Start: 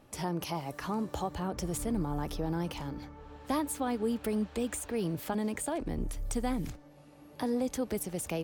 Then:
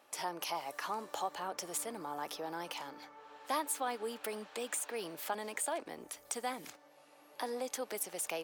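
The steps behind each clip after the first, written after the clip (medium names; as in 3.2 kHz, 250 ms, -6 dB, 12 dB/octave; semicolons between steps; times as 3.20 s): high-pass 650 Hz 12 dB/octave; trim +1 dB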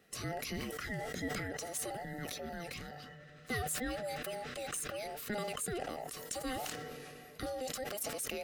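every band turned upside down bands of 1 kHz; decay stretcher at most 22 dB/s; trim -2.5 dB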